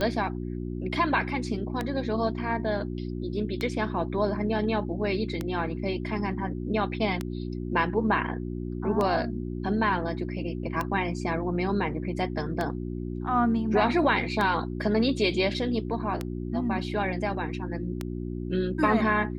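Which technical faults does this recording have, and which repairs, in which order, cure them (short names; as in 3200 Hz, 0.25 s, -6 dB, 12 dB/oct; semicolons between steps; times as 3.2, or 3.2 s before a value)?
hum 60 Hz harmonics 6 -33 dBFS
tick 33 1/3 rpm -15 dBFS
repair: de-click; de-hum 60 Hz, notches 6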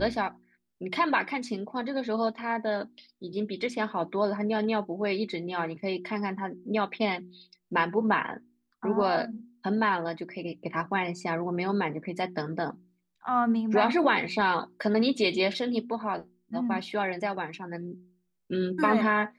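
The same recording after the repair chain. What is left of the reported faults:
none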